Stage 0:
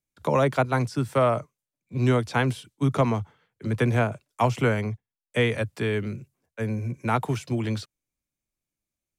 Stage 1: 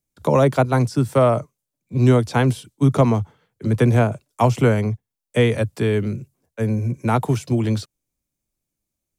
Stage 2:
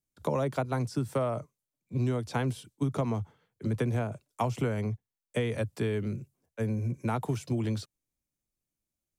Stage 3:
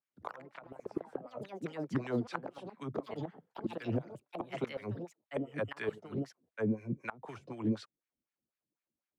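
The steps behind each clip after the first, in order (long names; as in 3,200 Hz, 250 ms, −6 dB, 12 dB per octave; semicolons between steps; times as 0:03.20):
parametric band 2,000 Hz −7 dB 2.3 octaves; level +7.5 dB
downward compressor, threshold −18 dBFS, peak gain reduction 8.5 dB; level −7.5 dB
LFO wah 4 Hz 220–2,000 Hz, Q 2; gate with flip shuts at −28 dBFS, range −24 dB; delay with pitch and tempo change per echo 92 ms, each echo +4 semitones, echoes 3, each echo −6 dB; level +5.5 dB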